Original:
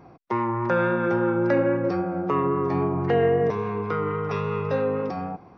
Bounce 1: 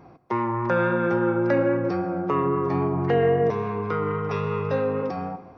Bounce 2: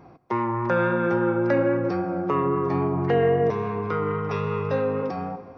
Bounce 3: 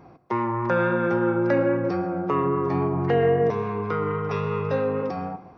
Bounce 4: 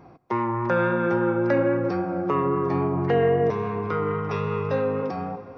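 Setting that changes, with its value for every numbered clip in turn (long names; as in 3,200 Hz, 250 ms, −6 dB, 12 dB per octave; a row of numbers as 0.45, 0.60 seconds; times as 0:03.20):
dense smooth reverb, RT60: 1.1, 2.5, 0.5, 5.3 seconds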